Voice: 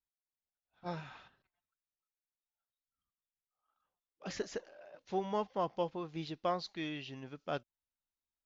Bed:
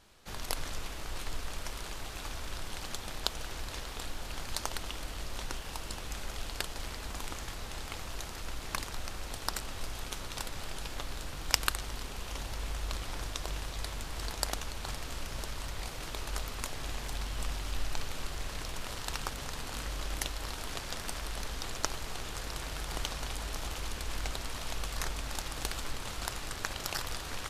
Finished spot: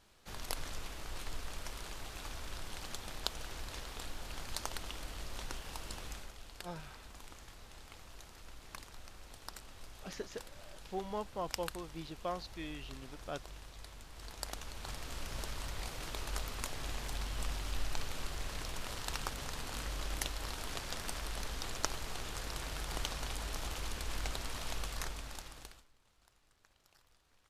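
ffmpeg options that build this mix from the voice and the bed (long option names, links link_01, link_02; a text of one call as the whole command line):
ffmpeg -i stem1.wav -i stem2.wav -filter_complex "[0:a]adelay=5800,volume=-4.5dB[link_01];[1:a]volume=6dB,afade=type=out:start_time=6.06:duration=0.28:silence=0.375837,afade=type=in:start_time=14.14:duration=1.24:silence=0.298538,afade=type=out:start_time=24.74:duration=1.12:silence=0.0316228[link_02];[link_01][link_02]amix=inputs=2:normalize=0" out.wav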